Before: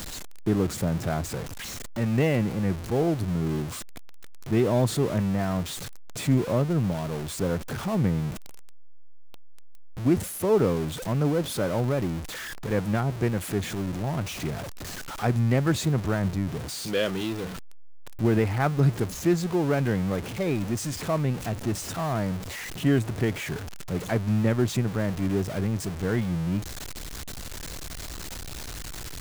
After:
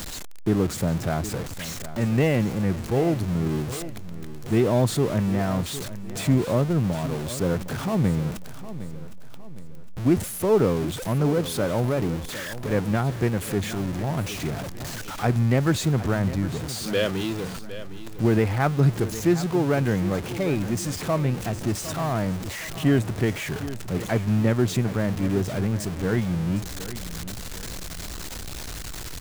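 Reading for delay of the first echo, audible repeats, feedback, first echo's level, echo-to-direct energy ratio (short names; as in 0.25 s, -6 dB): 0.76 s, 3, 40%, -14.0 dB, -13.0 dB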